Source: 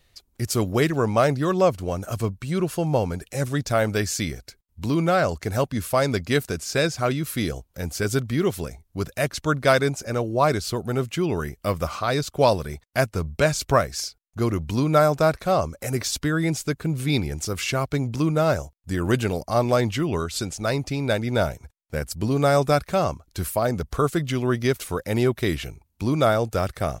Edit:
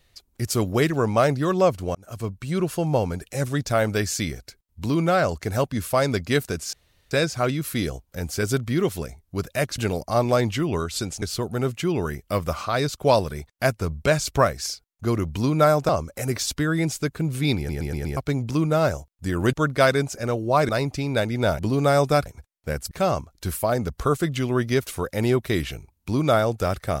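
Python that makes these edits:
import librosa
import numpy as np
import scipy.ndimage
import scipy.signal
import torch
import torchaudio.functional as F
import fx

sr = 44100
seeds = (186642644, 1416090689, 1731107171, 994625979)

y = fx.edit(x, sr, fx.fade_in_span(start_s=1.95, length_s=0.68, curve='qsin'),
    fx.insert_room_tone(at_s=6.73, length_s=0.38),
    fx.swap(start_s=9.4, length_s=1.16, other_s=19.18, other_length_s=1.44),
    fx.cut(start_s=15.23, length_s=0.31),
    fx.stutter_over(start_s=17.22, slice_s=0.12, count=5),
    fx.move(start_s=21.52, length_s=0.65, to_s=22.84), tone=tone)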